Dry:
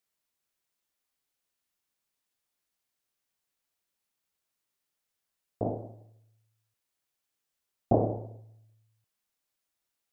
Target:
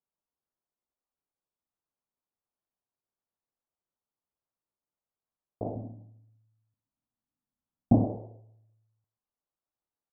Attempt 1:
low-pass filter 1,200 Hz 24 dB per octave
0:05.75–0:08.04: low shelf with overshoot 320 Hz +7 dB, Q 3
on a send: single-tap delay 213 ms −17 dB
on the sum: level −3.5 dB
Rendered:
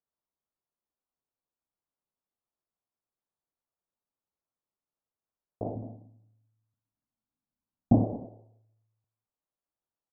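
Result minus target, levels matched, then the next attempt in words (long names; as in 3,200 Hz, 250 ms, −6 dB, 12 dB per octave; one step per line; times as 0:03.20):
echo 83 ms late
low-pass filter 1,200 Hz 24 dB per octave
0:05.75–0:08.04: low shelf with overshoot 320 Hz +7 dB, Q 3
on a send: single-tap delay 130 ms −17 dB
on the sum: level −3.5 dB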